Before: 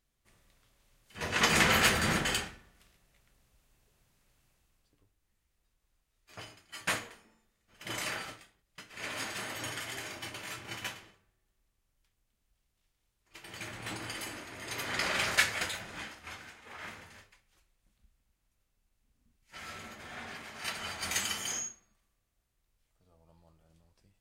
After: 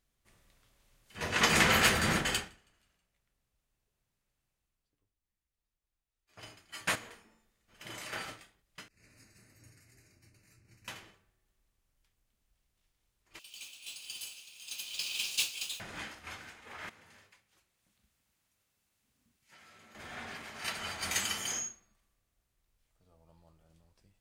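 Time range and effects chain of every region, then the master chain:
0:02.21–0:06.43: echo with shifted repeats 161 ms, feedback 56%, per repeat −52 Hz, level −22 dB + expander for the loud parts, over −55 dBFS
0:06.95–0:08.13: downward compressor 2.5 to 1, threshold −44 dBFS + hum removal 94.21 Hz, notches 30
0:08.88–0:10.88: Butterworth band-reject 3,300 Hz, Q 2.2 + guitar amp tone stack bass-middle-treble 10-0-1
0:13.39–0:15.80: Butterworth high-pass 2,500 Hz 96 dB per octave + noise that follows the level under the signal 12 dB
0:16.89–0:19.95: high-pass filter 100 Hz + downward compressor 10 to 1, threshold −55 dBFS + one half of a high-frequency compander encoder only
whole clip: no processing

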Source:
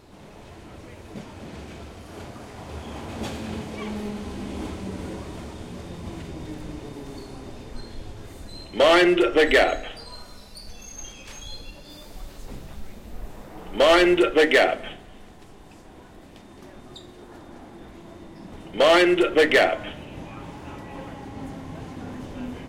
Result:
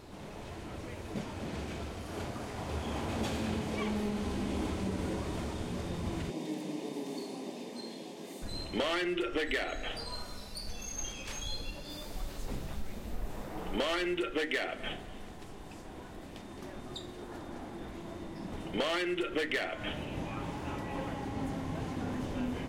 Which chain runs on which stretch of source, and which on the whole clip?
0:06.30–0:08.42: Butterworth high-pass 170 Hz 48 dB per octave + parametric band 1,400 Hz −15 dB 0.44 octaves
whole clip: dynamic equaliser 620 Hz, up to −7 dB, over −31 dBFS, Q 0.98; downward compressor 12 to 1, threshold −29 dBFS

